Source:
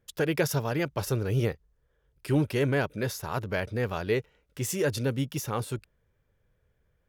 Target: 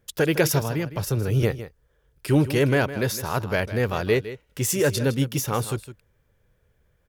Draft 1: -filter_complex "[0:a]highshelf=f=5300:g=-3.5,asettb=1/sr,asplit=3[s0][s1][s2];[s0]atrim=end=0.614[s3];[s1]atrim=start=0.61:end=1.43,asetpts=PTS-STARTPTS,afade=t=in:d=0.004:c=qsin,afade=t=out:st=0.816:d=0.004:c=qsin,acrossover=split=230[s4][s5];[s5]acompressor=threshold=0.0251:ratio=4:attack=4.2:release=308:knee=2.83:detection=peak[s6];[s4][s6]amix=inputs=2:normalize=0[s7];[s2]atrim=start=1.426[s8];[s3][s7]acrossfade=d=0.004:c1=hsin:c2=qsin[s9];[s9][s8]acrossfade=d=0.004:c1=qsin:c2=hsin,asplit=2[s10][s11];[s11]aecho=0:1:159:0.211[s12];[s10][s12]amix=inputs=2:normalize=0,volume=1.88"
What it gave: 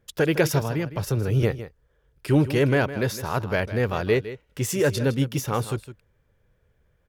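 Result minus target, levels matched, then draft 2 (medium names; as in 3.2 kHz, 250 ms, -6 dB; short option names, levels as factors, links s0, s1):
8 kHz band -4.5 dB
-filter_complex "[0:a]highshelf=f=5300:g=3.5,asettb=1/sr,asplit=3[s0][s1][s2];[s0]atrim=end=0.614[s3];[s1]atrim=start=0.61:end=1.43,asetpts=PTS-STARTPTS,afade=t=in:d=0.004:c=qsin,afade=t=out:st=0.816:d=0.004:c=qsin,acrossover=split=230[s4][s5];[s5]acompressor=threshold=0.0251:ratio=4:attack=4.2:release=308:knee=2.83:detection=peak[s6];[s4][s6]amix=inputs=2:normalize=0[s7];[s2]atrim=start=1.426[s8];[s3][s7]acrossfade=d=0.004:c1=hsin:c2=qsin[s9];[s9][s8]acrossfade=d=0.004:c1=qsin:c2=hsin,asplit=2[s10][s11];[s11]aecho=0:1:159:0.211[s12];[s10][s12]amix=inputs=2:normalize=0,volume=1.88"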